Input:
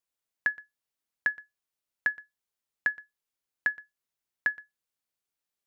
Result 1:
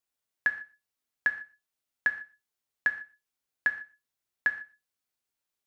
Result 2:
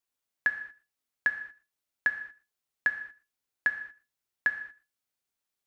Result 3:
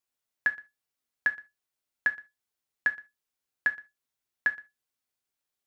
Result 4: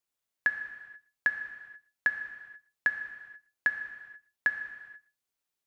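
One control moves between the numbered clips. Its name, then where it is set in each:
non-linear reverb, gate: 0.17, 0.26, 0.1, 0.51 s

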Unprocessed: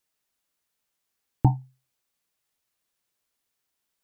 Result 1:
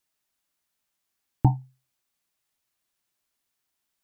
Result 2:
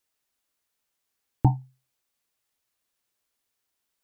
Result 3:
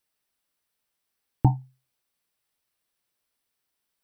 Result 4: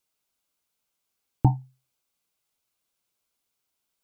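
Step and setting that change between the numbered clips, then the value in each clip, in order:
notch, frequency: 480, 170, 6800, 1800 Hz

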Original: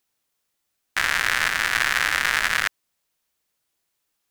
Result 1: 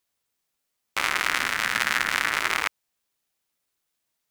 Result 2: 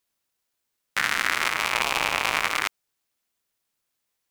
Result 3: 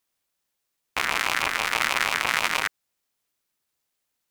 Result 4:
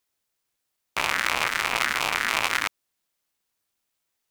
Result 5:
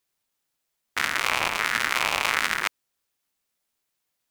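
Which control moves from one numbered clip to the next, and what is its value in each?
ring modulator with a swept carrier, at: 0.28, 0.49, 6.2, 2.9, 1.4 Hz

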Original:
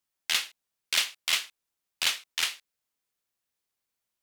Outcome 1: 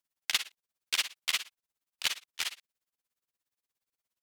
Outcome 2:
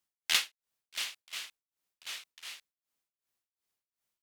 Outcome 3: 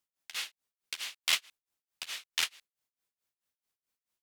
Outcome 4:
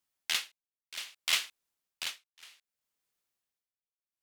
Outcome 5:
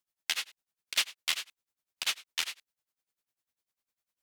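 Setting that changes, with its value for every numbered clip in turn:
tremolo, rate: 17, 2.7, 4.6, 0.64, 10 Hz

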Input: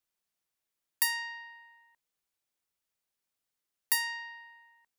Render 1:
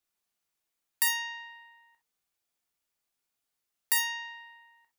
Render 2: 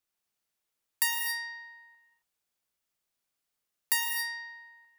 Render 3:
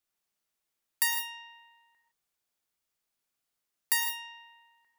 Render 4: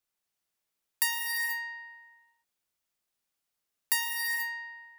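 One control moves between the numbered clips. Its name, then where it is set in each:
non-linear reverb, gate: 80, 290, 190, 510 ms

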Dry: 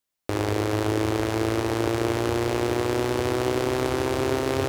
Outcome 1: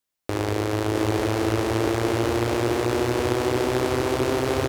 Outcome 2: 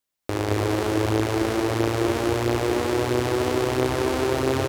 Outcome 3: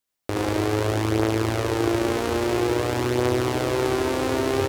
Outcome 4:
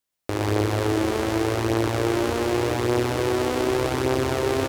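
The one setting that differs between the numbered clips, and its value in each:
echo, time: 657, 221, 73, 124 ms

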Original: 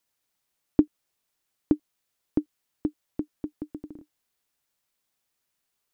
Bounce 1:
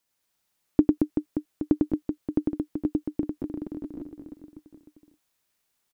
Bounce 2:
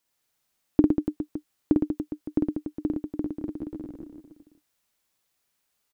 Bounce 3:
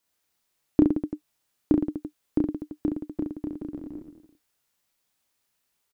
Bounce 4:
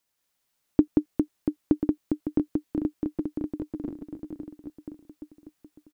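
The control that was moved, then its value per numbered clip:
reverse bouncing-ball echo, first gap: 100, 50, 30, 180 ms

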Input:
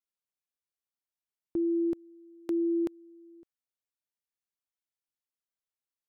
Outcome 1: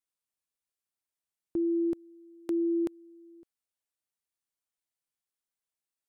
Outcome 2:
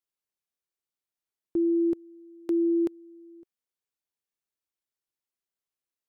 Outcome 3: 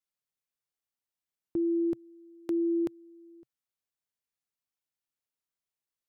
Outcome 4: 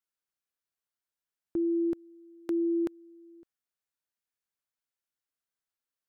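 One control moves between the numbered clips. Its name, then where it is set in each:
bell, frequency: 9100, 370, 130, 1500 Hz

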